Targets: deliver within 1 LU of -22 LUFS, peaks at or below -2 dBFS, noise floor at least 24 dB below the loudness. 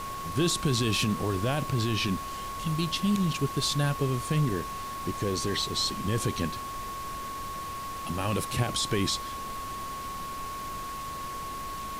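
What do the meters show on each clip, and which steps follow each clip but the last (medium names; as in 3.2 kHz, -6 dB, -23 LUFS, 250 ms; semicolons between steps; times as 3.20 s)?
steady tone 1.1 kHz; tone level -35 dBFS; noise floor -37 dBFS; noise floor target -54 dBFS; loudness -30.0 LUFS; peak level -16.0 dBFS; loudness target -22.0 LUFS
-> band-stop 1.1 kHz, Q 30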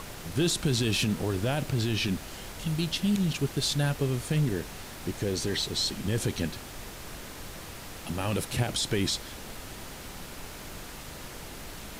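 steady tone not found; noise floor -43 dBFS; noise floor target -53 dBFS
-> noise print and reduce 10 dB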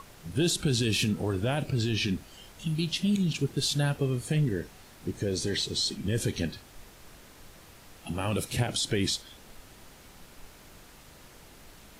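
noise floor -53 dBFS; loudness -29.0 LUFS; peak level -17.0 dBFS; loudness target -22.0 LUFS
-> trim +7 dB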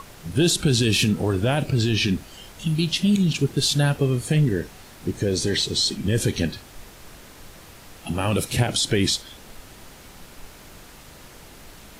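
loudness -22.0 LUFS; peak level -10.0 dBFS; noise floor -46 dBFS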